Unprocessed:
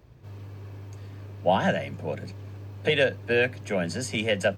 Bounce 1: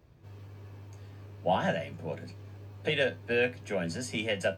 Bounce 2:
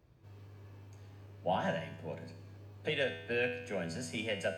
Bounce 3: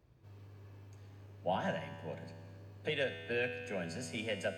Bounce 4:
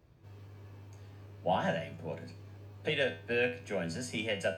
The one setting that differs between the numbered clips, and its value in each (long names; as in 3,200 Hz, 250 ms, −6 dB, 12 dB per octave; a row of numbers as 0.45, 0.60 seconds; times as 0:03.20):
tuned comb filter, decay: 0.17, 0.84, 2, 0.39 seconds